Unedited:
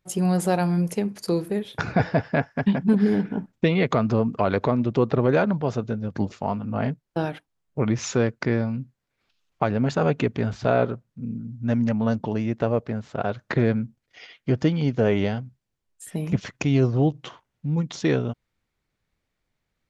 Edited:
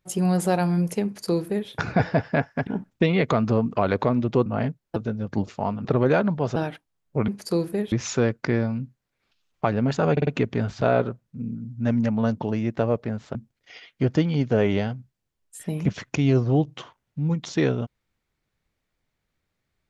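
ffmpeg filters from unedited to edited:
-filter_complex "[0:a]asplit=12[s0][s1][s2][s3][s4][s5][s6][s7][s8][s9][s10][s11];[s0]atrim=end=2.672[s12];[s1]atrim=start=3.288:end=5.082[s13];[s2]atrim=start=6.678:end=7.182[s14];[s3]atrim=start=5.788:end=6.682[s15];[s4]atrim=start=5.078:end=5.792[s16];[s5]atrim=start=7.178:end=7.902[s17];[s6]atrim=start=1.048:end=1.692[s18];[s7]atrim=start=7.898:end=10.152[s19];[s8]atrim=start=10.098:end=10.152[s20];[s9]atrim=start=10.098:end=10.152[s21];[s10]atrim=start=10.098:end=13.182[s22];[s11]atrim=start=13.818[s23];[s12][s13]acrossfade=d=0.004:c1=hsin:c2=hsin[s24];[s24][s14]acrossfade=d=0.004:c1=hsin:c2=hsin[s25];[s25][s15]acrossfade=d=0.004:c1=hsin:c2=hsin[s26];[s26][s16]acrossfade=d=0.004:c1=hsin:c2=hsin[s27];[s27][s17]acrossfade=d=0.004:c1=hsin:c2=hsin[s28];[s28][s18]acrossfade=d=0.004:c1=hsin:c2=hsin[s29];[s29][s19]acrossfade=d=0.004:c1=hsin:c2=hsin[s30];[s30][s20]acrossfade=d=0.004:c1=hsin:c2=hsin[s31];[s31][s21]acrossfade=d=0.004:c1=hsin:c2=hsin[s32];[s32][s22]acrossfade=d=0.004:c1=hsin:c2=hsin[s33];[s33][s23]acrossfade=d=0.004:c1=hsin:c2=hsin"

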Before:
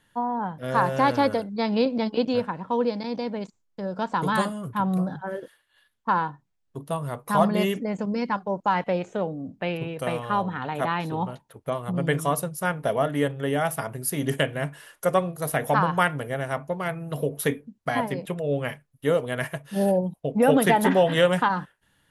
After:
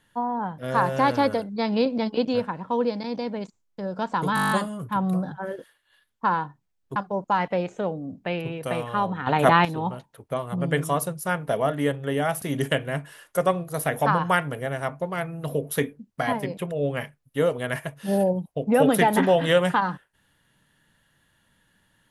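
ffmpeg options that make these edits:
-filter_complex "[0:a]asplit=13[s0][s1][s2][s3][s4][s5][s6][s7][s8][s9][s10][s11][s12];[s0]atrim=end=4.372[s13];[s1]atrim=start=4.348:end=4.372[s14];[s2]atrim=start=4.348:end=4.372[s15];[s3]atrim=start=4.348:end=4.372[s16];[s4]atrim=start=4.348:end=4.372[s17];[s5]atrim=start=4.348:end=4.372[s18];[s6]atrim=start=4.348:end=4.372[s19];[s7]atrim=start=4.348:end=4.372[s20];[s8]atrim=start=4.348:end=6.802[s21];[s9]atrim=start=8.318:end=10.632[s22];[s10]atrim=start=10.628:end=11.012,asetpts=PTS-STARTPTS,volume=2.82[s23];[s11]atrim=start=11.008:end=13.782[s24];[s12]atrim=start=14.098[s25];[s13][s14]acrossfade=d=0.004:c1=hsin:c2=hsin[s26];[s26][s15]acrossfade=d=0.004:c1=hsin:c2=hsin[s27];[s27][s16]acrossfade=d=0.004:c1=hsin:c2=hsin[s28];[s28][s17]acrossfade=d=0.004:c1=hsin:c2=hsin[s29];[s29][s18]acrossfade=d=0.004:c1=hsin:c2=hsin[s30];[s30][s19]acrossfade=d=0.004:c1=hsin:c2=hsin[s31];[s31][s20]acrossfade=d=0.004:c1=hsin:c2=hsin[s32];[s32][s21]acrossfade=d=0.004:c1=hsin:c2=hsin[s33];[s33][s22]acrossfade=d=0.004:c1=hsin:c2=hsin[s34];[s34][s23]acrossfade=d=0.004:c1=hsin:c2=hsin[s35];[s35][s24]acrossfade=d=0.004:c1=hsin:c2=hsin[s36];[s36][s25]acrossfade=d=0.004:c1=hsin:c2=hsin"

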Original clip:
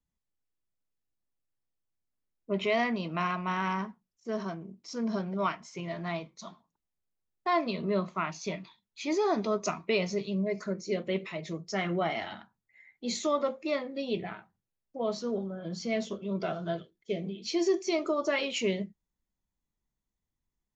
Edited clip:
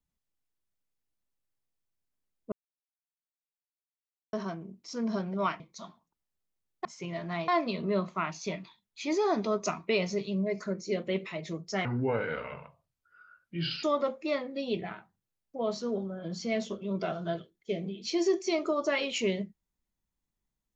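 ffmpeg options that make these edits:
-filter_complex "[0:a]asplit=8[s0][s1][s2][s3][s4][s5][s6][s7];[s0]atrim=end=2.52,asetpts=PTS-STARTPTS,afade=t=out:st=2.516:d=0.004:c=hsin[s8];[s1]atrim=start=2.52:end=4.33,asetpts=PTS-STARTPTS,volume=0[s9];[s2]atrim=start=4.33:end=5.602,asetpts=PTS-STARTPTS,afade=t=in:d=0.004:c=hsin[s10];[s3]atrim=start=6.228:end=7.482[s11];[s4]atrim=start=5.598:end=6.232[s12];[s5]atrim=start=7.478:end=11.854[s13];[s6]atrim=start=11.85:end=13.24,asetpts=PTS-STARTPTS,asetrate=30870,aresample=44100[s14];[s7]atrim=start=13.236[s15];[s8][s9][s10]concat=n=3:v=0:a=1[s16];[s16][s11]acrossfade=d=0.004:c1=hsin:c2=hsin[s17];[s17][s12]acrossfade=d=0.004:c1=hsin:c2=hsin[s18];[s18][s13]acrossfade=d=0.004:c1=hsin:c2=hsin[s19];[s19][s14]acrossfade=d=0.004:c1=hsin:c2=hsin[s20];[s20][s15]acrossfade=d=0.004:c1=hsin:c2=hsin"

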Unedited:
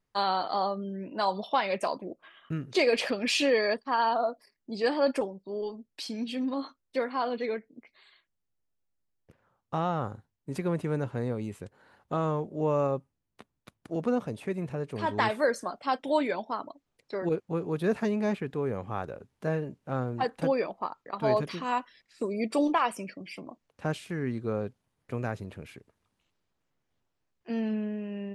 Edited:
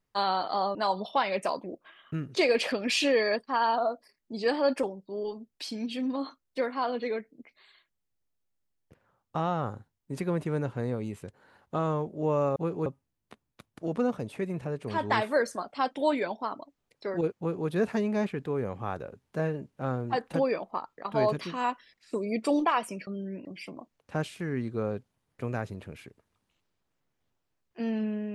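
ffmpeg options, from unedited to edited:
-filter_complex "[0:a]asplit=6[s0][s1][s2][s3][s4][s5];[s0]atrim=end=0.752[s6];[s1]atrim=start=1.128:end=12.942[s7];[s2]atrim=start=17.458:end=17.762[s8];[s3]atrim=start=12.938:end=23.152[s9];[s4]atrim=start=0.748:end=1.132[s10];[s5]atrim=start=23.148[s11];[s6][s7]acrossfade=d=0.004:c1=hsin:c2=hsin[s12];[s12][s8]acrossfade=d=0.004:c1=hsin:c2=hsin[s13];[s13][s9]acrossfade=d=0.004:c1=hsin:c2=hsin[s14];[s14][s10]acrossfade=d=0.004:c1=hsin:c2=hsin[s15];[s15][s11]acrossfade=d=0.004:c1=hsin:c2=hsin"

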